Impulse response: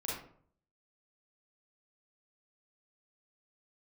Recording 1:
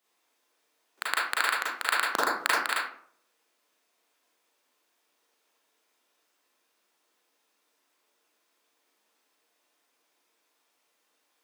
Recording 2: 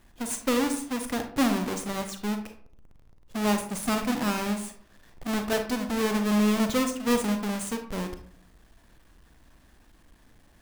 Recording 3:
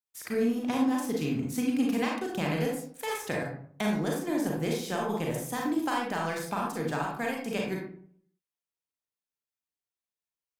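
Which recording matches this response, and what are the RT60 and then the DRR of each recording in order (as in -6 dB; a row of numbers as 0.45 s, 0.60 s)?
1; 0.55 s, 0.55 s, 0.55 s; -6.0 dB, 6.0 dB, -2.0 dB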